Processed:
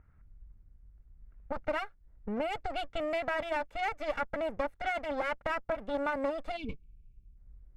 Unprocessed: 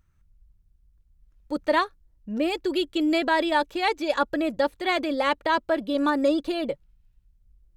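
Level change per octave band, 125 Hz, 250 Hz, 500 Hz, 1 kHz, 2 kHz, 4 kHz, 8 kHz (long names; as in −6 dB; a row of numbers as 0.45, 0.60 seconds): can't be measured, −15.0 dB, −8.0 dB, −9.0 dB, −8.0 dB, −14.0 dB, below −10 dB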